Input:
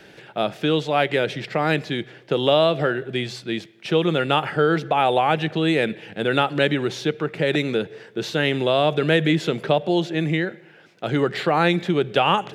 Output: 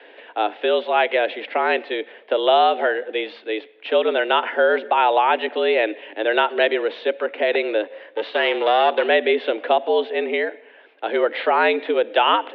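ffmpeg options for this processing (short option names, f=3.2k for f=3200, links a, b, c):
-filter_complex "[0:a]asettb=1/sr,asplit=3[a][b][c];[a]atrim=end=7.834[d];[b]atrim=start=7.83:end=9.09,asetpts=PTS-STARTPTS,afade=t=in:d=0.004:c=qsin,afade=t=out:st=1.256:d=0.004:c=qsin,aeval=exprs='0.447*(cos(1*acos(clip(val(0)/0.447,-1,1)))-cos(1*PI/2))+0.0447*(cos(8*acos(clip(val(0)/0.447,-1,1)))-cos(8*PI/2))':c=same[e];[c]atrim=start=9.086[f];[d][e]acrossfade=d=0.004:c1=hsin:c2=qsin[g];[g][f]acrossfade=d=0.004:c1=qsin:c2=hsin,highpass=f=220:t=q:w=0.5412,highpass=f=220:t=q:w=1.307,lowpass=f=3.3k:t=q:w=0.5176,lowpass=f=3.3k:t=q:w=0.7071,lowpass=f=3.3k:t=q:w=1.932,afreqshift=97,volume=2dB"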